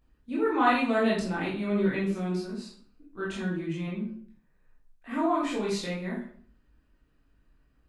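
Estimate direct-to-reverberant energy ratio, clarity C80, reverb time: -7.0 dB, 8.5 dB, 0.55 s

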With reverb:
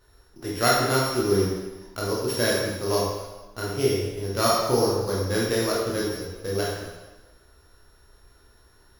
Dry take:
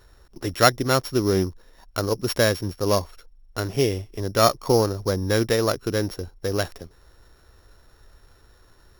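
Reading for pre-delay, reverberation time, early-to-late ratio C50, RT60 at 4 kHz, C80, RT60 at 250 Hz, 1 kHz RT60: 16 ms, 1.2 s, 0.0 dB, 1.1 s, 2.5 dB, 1.1 s, 1.2 s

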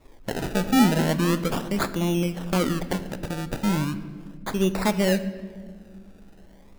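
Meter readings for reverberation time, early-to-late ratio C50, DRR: 1.7 s, 13.5 dB, 11.0 dB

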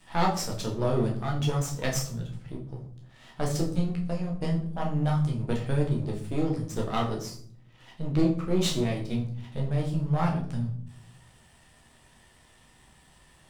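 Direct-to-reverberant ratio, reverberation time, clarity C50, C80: -2.0 dB, 0.60 s, 8.5 dB, 13.0 dB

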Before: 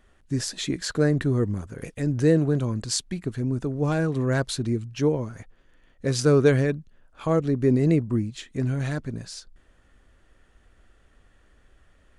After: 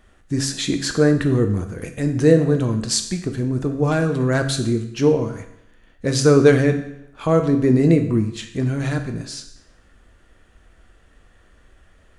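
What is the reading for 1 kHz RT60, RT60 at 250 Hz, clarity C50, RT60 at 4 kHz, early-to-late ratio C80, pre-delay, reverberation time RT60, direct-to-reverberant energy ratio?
0.75 s, 0.75 s, 9.5 dB, 0.75 s, 12.0 dB, 7 ms, 0.75 s, 5.5 dB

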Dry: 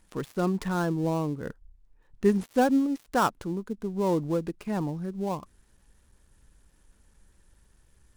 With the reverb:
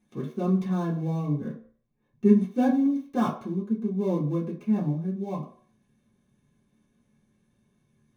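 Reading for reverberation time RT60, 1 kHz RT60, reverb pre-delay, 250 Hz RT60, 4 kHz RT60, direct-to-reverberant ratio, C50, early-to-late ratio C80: 0.50 s, 0.55 s, 3 ms, 0.40 s, 0.40 s, -7.5 dB, 9.5 dB, 13.5 dB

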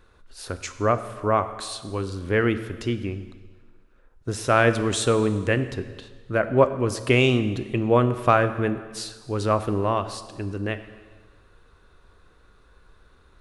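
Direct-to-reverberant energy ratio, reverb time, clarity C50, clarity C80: 10.5 dB, 1.5 s, 12.0 dB, 13.5 dB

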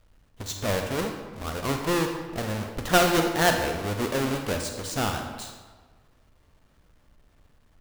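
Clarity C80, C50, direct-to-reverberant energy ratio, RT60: 7.0 dB, 5.0 dB, 4.0 dB, 1.4 s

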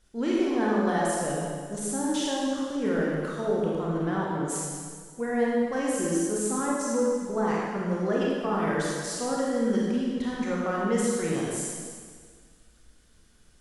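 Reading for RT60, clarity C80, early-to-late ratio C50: 1.8 s, 0.0 dB, -2.5 dB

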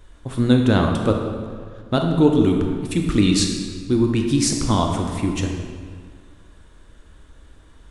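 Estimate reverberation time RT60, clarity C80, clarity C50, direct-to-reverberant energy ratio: 1.9 s, 5.0 dB, 3.5 dB, 2.0 dB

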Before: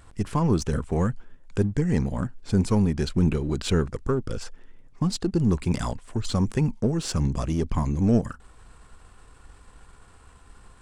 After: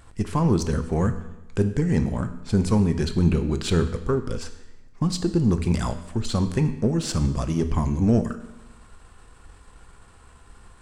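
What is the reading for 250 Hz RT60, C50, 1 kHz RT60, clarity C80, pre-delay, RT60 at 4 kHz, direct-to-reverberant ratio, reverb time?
1.0 s, 11.5 dB, 1.0 s, 13.5 dB, 4 ms, 0.95 s, 8.0 dB, 1.0 s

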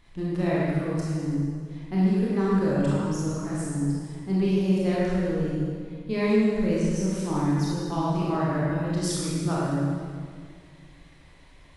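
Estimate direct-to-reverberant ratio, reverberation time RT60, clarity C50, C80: -7.5 dB, 2.0 s, -4.0 dB, -1.5 dB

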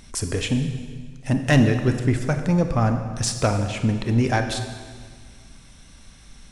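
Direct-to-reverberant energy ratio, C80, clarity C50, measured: 6.5 dB, 9.0 dB, 7.5 dB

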